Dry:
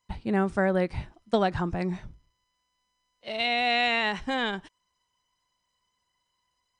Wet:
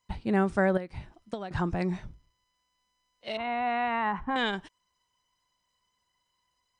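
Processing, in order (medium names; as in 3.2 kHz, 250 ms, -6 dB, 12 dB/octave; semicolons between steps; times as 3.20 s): 0.77–1.51 s: compression 12:1, threshold -33 dBFS, peak gain reduction 15 dB; 3.37–4.36 s: FFT filter 230 Hz 0 dB, 360 Hz -5 dB, 610 Hz -7 dB, 1 kHz +8 dB, 4.7 kHz -27 dB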